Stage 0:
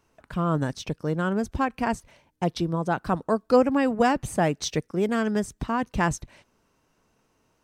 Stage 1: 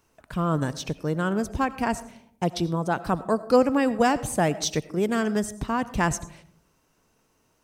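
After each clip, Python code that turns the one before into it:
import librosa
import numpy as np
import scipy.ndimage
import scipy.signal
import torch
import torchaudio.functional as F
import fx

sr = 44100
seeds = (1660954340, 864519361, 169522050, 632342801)

y = fx.high_shelf(x, sr, hz=6600.0, db=8.0)
y = fx.rev_freeverb(y, sr, rt60_s=0.68, hf_ratio=0.3, predelay_ms=50, drr_db=16.0)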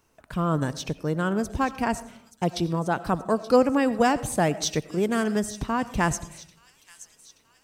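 y = fx.echo_wet_highpass(x, sr, ms=877, feedback_pct=55, hz=3600.0, wet_db=-12.5)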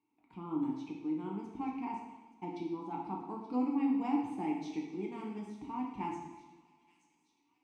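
y = fx.vowel_filter(x, sr, vowel='u')
y = fx.rev_double_slope(y, sr, seeds[0], early_s=0.9, late_s=2.5, knee_db=-18, drr_db=-1.5)
y = y * librosa.db_to_amplitude(-4.5)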